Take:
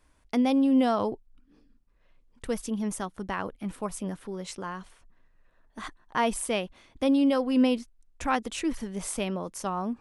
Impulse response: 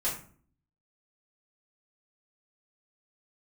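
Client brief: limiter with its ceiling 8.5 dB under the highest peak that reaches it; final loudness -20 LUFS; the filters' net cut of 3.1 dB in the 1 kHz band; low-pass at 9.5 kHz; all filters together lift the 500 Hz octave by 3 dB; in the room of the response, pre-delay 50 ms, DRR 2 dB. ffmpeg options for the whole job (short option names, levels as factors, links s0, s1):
-filter_complex "[0:a]lowpass=9500,equalizer=f=500:t=o:g=5,equalizer=f=1000:t=o:g=-6.5,alimiter=limit=0.0944:level=0:latency=1,asplit=2[s0][s1];[1:a]atrim=start_sample=2205,adelay=50[s2];[s1][s2]afir=irnorm=-1:irlink=0,volume=0.376[s3];[s0][s3]amix=inputs=2:normalize=0,volume=2.99"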